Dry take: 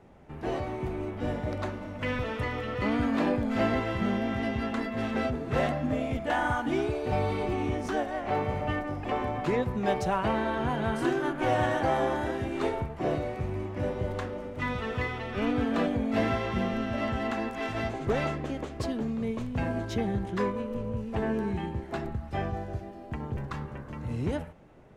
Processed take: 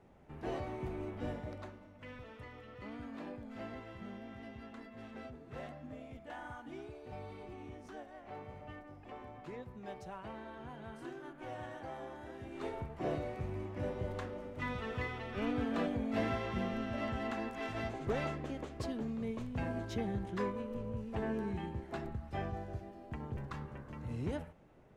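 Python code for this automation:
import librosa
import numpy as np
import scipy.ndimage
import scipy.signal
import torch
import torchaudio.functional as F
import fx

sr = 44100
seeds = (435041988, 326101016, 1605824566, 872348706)

y = fx.gain(x, sr, db=fx.line((1.21, -7.5), (1.92, -19.0), (12.17, -19.0), (12.97, -7.5)))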